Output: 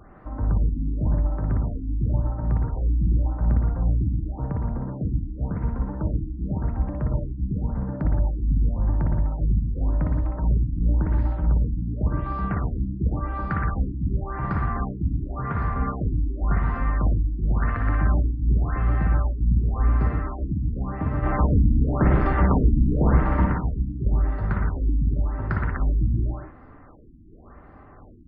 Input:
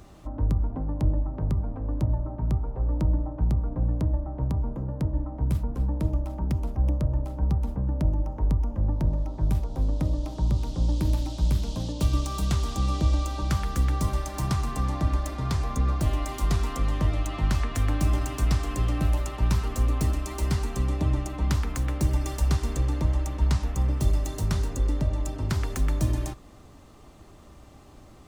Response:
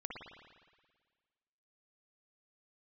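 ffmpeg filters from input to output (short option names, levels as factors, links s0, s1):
-filter_complex "[0:a]highshelf=f=2400:t=q:w=3:g=-14,asplit=3[s0][s1][s2];[s0]afade=t=out:st=21.22:d=0.02[s3];[s1]aeval=exprs='0.266*(cos(1*acos(clip(val(0)/0.266,-1,1)))-cos(1*PI/2))+0.133*(cos(5*acos(clip(val(0)/0.266,-1,1)))-cos(5*PI/2))':c=same,afade=t=in:st=21.22:d=0.02,afade=t=out:st=23.44:d=0.02[s4];[s2]afade=t=in:st=23.44:d=0.02[s5];[s3][s4][s5]amix=inputs=3:normalize=0[s6];[1:a]atrim=start_sample=2205,afade=t=out:st=0.24:d=0.01,atrim=end_sample=11025[s7];[s6][s7]afir=irnorm=-1:irlink=0,afftfilt=real='re*lt(b*sr/1024,320*pow(5200/320,0.5+0.5*sin(2*PI*0.91*pts/sr)))':imag='im*lt(b*sr/1024,320*pow(5200/320,0.5+0.5*sin(2*PI*0.91*pts/sr)))':win_size=1024:overlap=0.75,volume=1.58"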